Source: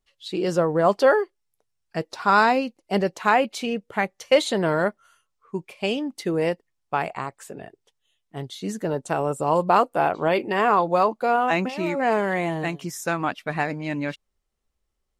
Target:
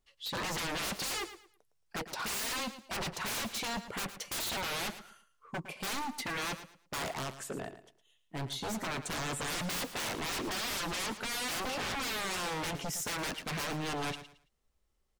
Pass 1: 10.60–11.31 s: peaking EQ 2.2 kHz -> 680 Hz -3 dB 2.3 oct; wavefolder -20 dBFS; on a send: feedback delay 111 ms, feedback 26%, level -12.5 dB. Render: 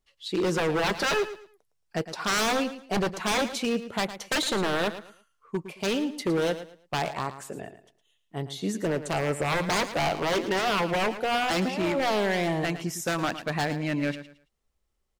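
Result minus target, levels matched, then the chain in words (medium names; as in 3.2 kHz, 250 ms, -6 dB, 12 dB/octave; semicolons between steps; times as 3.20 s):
wavefolder: distortion -20 dB
10.60–11.31 s: peaking EQ 2.2 kHz -> 680 Hz -3 dB 2.3 oct; wavefolder -31 dBFS; on a send: feedback delay 111 ms, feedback 26%, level -12.5 dB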